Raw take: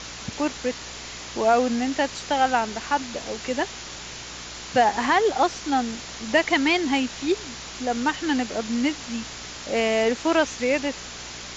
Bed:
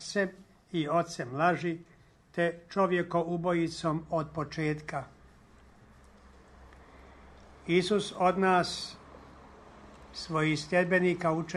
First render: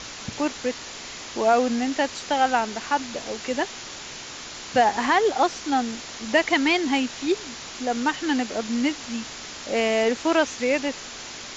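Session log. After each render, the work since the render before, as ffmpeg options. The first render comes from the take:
-af "bandreject=f=60:t=h:w=4,bandreject=f=120:t=h:w=4,bandreject=f=180:t=h:w=4"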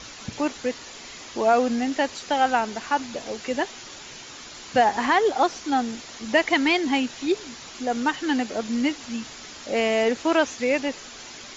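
-af "afftdn=nr=6:nf=-38"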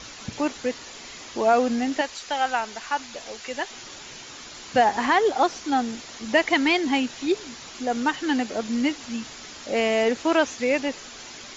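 -filter_complex "[0:a]asettb=1/sr,asplit=3[a][b][c];[a]atrim=end=2.014[d];[b]atrim=start=2.01:end=3.71,asetpts=PTS-STARTPTS,afade=t=in:d=0.004:c=qsin,afade=t=out:st=1.696:d=0.004:c=qsin,equalizer=f=200:t=o:w=3:g=-10.5[e];[c]atrim=start=3.706[f];[d][e]acrossfade=d=0.004:c1=hsin:c2=qsin[g];[g][f]acrossfade=d=0.004:c1=qsin:c2=hsin"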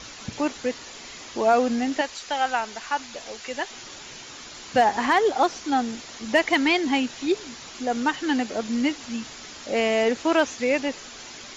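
-af "asoftclip=type=hard:threshold=-9.5dB"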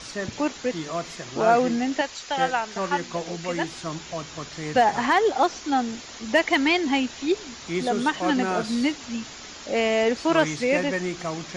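-filter_complex "[1:a]volume=-2dB[a];[0:a][a]amix=inputs=2:normalize=0"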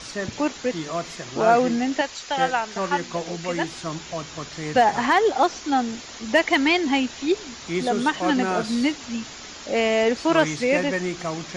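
-af "volume=1.5dB"

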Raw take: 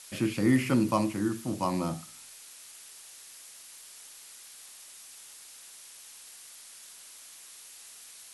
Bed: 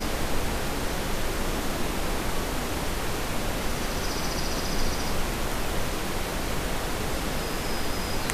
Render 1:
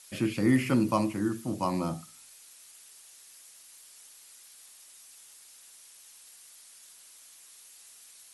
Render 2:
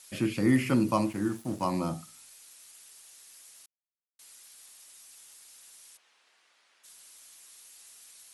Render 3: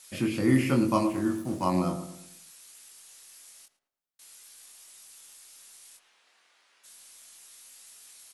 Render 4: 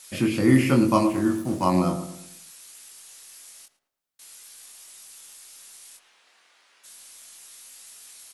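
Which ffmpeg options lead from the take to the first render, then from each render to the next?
-af "afftdn=nr=6:nf=-50"
-filter_complex "[0:a]asettb=1/sr,asplit=3[a][b][c];[a]atrim=end=1.064[d];[b]atrim=start=1.06:end=1.65,asetpts=PTS-STARTPTS,afade=t=in:d=0.004:c=qsin,afade=t=out:st=0.586:d=0.004:c=qsin,aeval=exprs='sgn(val(0))*max(abs(val(0))-0.00335,0)':c=same[e];[c]atrim=start=1.646[f];[d][e]acrossfade=d=0.004:c1=hsin:c2=qsin[g];[g][f]acrossfade=d=0.004:c1=qsin:c2=hsin,asplit=3[h][i][j];[h]afade=t=out:st=5.96:d=0.02[k];[i]highpass=330,lowpass=2.5k,afade=t=in:st=5.96:d=0.02,afade=t=out:st=6.83:d=0.02[l];[j]afade=t=in:st=6.83:d=0.02[m];[k][l][m]amix=inputs=3:normalize=0,asplit=3[n][o][p];[n]atrim=end=3.66,asetpts=PTS-STARTPTS,afade=t=out:st=3.656:d=0.004:c=hsin[q];[o]atrim=start=3.66:end=4.19,asetpts=PTS-STARTPTS,volume=0[r];[p]atrim=start=4.19,asetpts=PTS-STARTPTS,afade=t=in:d=0.004:c=hsin[s];[q][r][s]concat=n=3:v=0:a=1"
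-filter_complex "[0:a]asplit=2[a][b];[b]adelay=22,volume=-4.5dB[c];[a][c]amix=inputs=2:normalize=0,asplit=2[d][e];[e]adelay=110,lowpass=f=1.5k:p=1,volume=-10dB,asplit=2[f][g];[g]adelay=110,lowpass=f=1.5k:p=1,volume=0.44,asplit=2[h][i];[i]adelay=110,lowpass=f=1.5k:p=1,volume=0.44,asplit=2[j][k];[k]adelay=110,lowpass=f=1.5k:p=1,volume=0.44,asplit=2[l][m];[m]adelay=110,lowpass=f=1.5k:p=1,volume=0.44[n];[d][f][h][j][l][n]amix=inputs=6:normalize=0"
-af "volume=5dB"

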